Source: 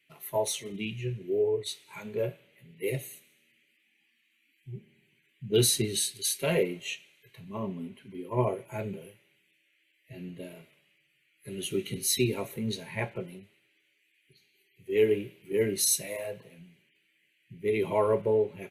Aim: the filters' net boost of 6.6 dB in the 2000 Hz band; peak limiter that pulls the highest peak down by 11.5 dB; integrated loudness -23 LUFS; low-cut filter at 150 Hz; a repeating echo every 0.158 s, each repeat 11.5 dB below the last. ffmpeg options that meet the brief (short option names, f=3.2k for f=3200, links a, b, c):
-af "highpass=150,equalizer=f=2k:t=o:g=8,alimiter=limit=-22dB:level=0:latency=1,aecho=1:1:158|316|474:0.266|0.0718|0.0194,volume=10dB"